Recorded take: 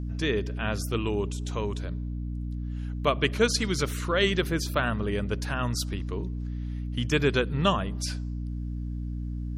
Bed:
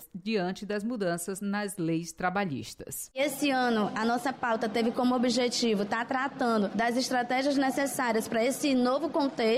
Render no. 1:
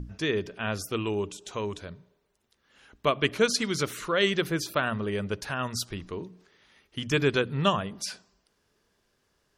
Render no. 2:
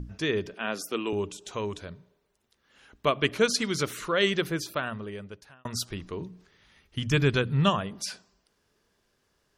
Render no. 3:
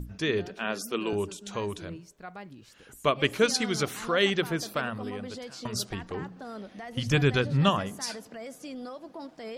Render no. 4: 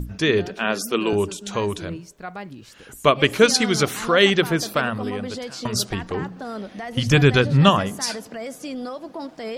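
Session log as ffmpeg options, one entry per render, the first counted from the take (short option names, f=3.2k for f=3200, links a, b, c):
-af "bandreject=f=60:t=h:w=6,bandreject=f=120:t=h:w=6,bandreject=f=180:t=h:w=6,bandreject=f=240:t=h:w=6,bandreject=f=300:t=h:w=6"
-filter_complex "[0:a]asettb=1/sr,asplit=3[a][b][c];[a]atrim=end=0.544[d];[b]atrim=start=0.54:end=1.13,asetpts=PTS-STARTPTS,afade=t=in:d=0.004:c=qsin,afade=t=out:st=0.586:d=0.004:c=qsin,highpass=f=200:w=0.5412,highpass=f=200:w=1.3066[e];[c]atrim=start=1.126[f];[d][e]acrossfade=d=0.004:c1=hsin:c2=qsin[g];[g][f]acrossfade=d=0.004:c1=qsin:c2=hsin,asplit=3[h][i][j];[h]afade=t=out:st=6.18:d=0.02[k];[i]asubboost=boost=2.5:cutoff=190,afade=t=in:st=6.18:d=0.02,afade=t=out:st=7.69:d=0.02[l];[j]afade=t=in:st=7.69:d=0.02[m];[k][l][m]amix=inputs=3:normalize=0,asplit=2[n][o];[n]atrim=end=5.65,asetpts=PTS-STARTPTS,afade=t=out:st=4.33:d=1.32[p];[o]atrim=start=5.65,asetpts=PTS-STARTPTS,afade=t=in:d=0.004:c=hsin[q];[p][q]concat=n=2:v=0:a=1"
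-filter_complex "[1:a]volume=-14dB[a];[0:a][a]amix=inputs=2:normalize=0"
-af "volume=8.5dB,alimiter=limit=-2dB:level=0:latency=1"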